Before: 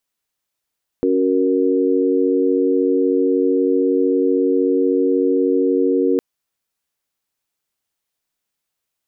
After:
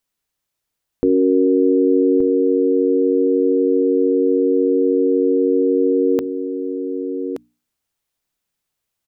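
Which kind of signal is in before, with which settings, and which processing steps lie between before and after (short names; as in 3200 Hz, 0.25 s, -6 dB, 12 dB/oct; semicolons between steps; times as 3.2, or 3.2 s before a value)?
chord C#4/F#4/A#4 sine, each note -18 dBFS 5.16 s
low shelf 210 Hz +7.5 dB; notches 60/120/180/240/300 Hz; on a send: echo 1.174 s -9.5 dB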